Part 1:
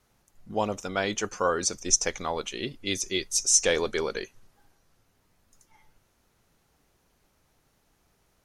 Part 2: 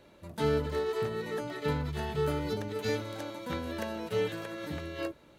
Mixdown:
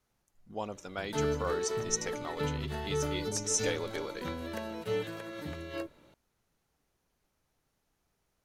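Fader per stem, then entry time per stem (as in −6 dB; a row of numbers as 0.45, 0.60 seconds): −10.0, −2.5 decibels; 0.00, 0.75 seconds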